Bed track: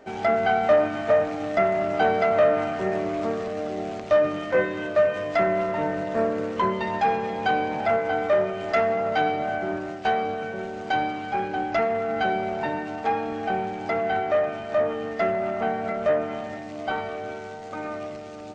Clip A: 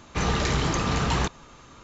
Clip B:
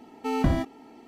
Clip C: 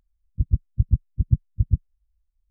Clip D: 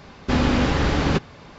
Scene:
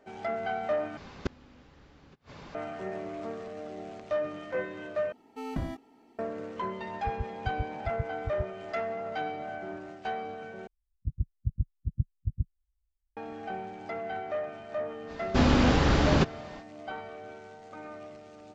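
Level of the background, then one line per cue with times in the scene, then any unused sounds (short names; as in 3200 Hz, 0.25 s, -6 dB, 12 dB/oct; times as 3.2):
bed track -11 dB
0.97 replace with D -3 dB + flipped gate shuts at -14 dBFS, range -33 dB
5.12 replace with B -10.5 dB
6.67 add C -15 dB
10.67 replace with C -10 dB
15.06 add D -2.5 dB, fades 0.05 s + bell 2100 Hz -2 dB
not used: A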